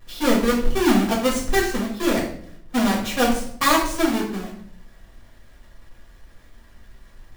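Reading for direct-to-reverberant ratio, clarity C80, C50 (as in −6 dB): −4.0 dB, 9.5 dB, 5.5 dB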